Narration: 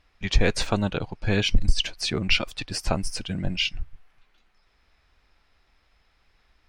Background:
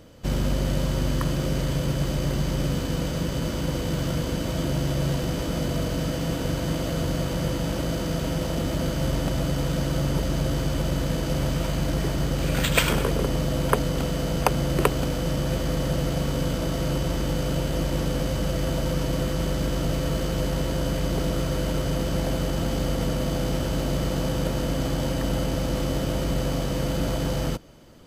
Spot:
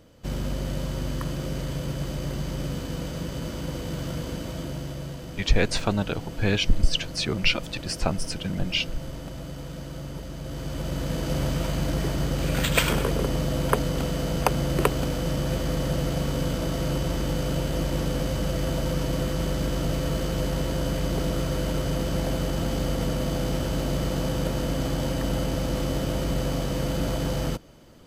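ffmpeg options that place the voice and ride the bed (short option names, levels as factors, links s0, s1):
-filter_complex "[0:a]adelay=5150,volume=0.944[s0];[1:a]volume=1.88,afade=t=out:st=4.32:d=0.84:silence=0.473151,afade=t=in:st=10.4:d=0.95:silence=0.298538[s1];[s0][s1]amix=inputs=2:normalize=0"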